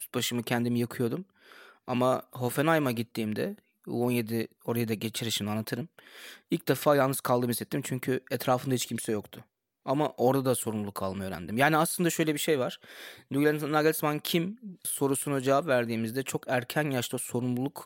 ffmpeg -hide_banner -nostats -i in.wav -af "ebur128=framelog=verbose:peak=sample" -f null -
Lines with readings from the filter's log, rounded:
Integrated loudness:
  I:         -29.1 LUFS
  Threshold: -39.5 LUFS
Loudness range:
  LRA:         2.8 LU
  Threshold: -49.4 LUFS
  LRA low:   -30.8 LUFS
  LRA high:  -28.0 LUFS
Sample peak:
  Peak:       -8.5 dBFS